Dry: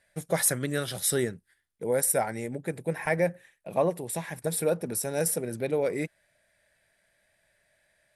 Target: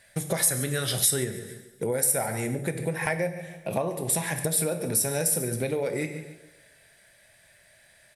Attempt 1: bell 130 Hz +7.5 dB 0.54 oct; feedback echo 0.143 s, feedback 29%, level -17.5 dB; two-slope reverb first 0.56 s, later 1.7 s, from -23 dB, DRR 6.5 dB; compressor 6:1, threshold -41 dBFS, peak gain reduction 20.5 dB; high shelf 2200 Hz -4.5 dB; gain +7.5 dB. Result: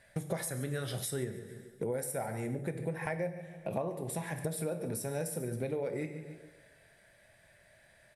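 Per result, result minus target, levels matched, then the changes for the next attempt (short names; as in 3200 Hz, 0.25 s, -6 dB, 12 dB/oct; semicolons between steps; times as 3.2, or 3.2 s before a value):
compressor: peak gain reduction +6 dB; 4000 Hz band -4.0 dB
change: compressor 6:1, threshold -33.5 dBFS, peak gain reduction 14.5 dB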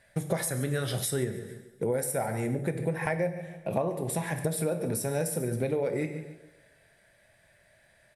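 4000 Hz band -4.0 dB
change: high shelf 2200 Hz +6.5 dB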